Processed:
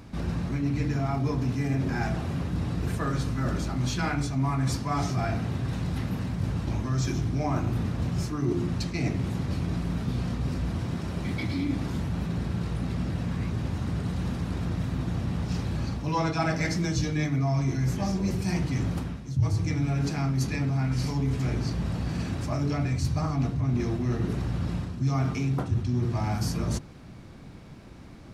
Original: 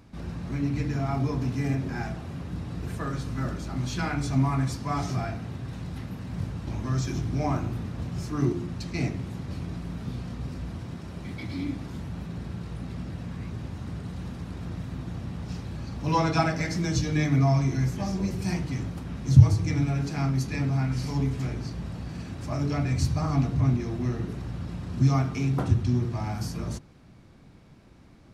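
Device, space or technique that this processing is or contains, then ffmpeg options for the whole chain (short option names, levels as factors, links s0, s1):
compression on the reversed sound: -af "areverse,acompressor=threshold=0.0282:ratio=5,areverse,volume=2.24"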